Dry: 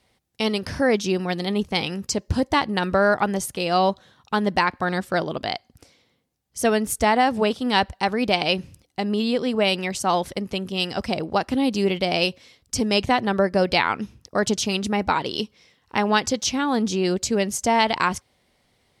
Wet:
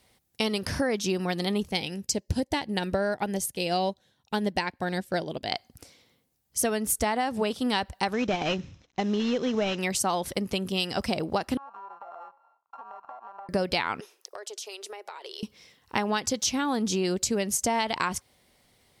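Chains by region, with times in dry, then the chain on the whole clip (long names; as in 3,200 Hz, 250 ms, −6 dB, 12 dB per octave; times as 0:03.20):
0:01.71–0:05.52: parametric band 1,200 Hz −12 dB 0.49 octaves + expander for the loud parts, over −42 dBFS
0:08.13–0:09.79: variable-slope delta modulation 32 kbit/s + notch filter 4,600 Hz, Q 5
0:11.57–0:13.49: samples sorted by size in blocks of 32 samples + flat-topped band-pass 860 Hz, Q 2.2 + downward compressor 16 to 1, threshold −39 dBFS
0:14.00–0:15.43: Chebyshev high-pass filter 380 Hz, order 5 + downward compressor 12 to 1, threshold −37 dBFS
whole clip: high-shelf EQ 8,700 Hz +11 dB; downward compressor, threshold −23 dBFS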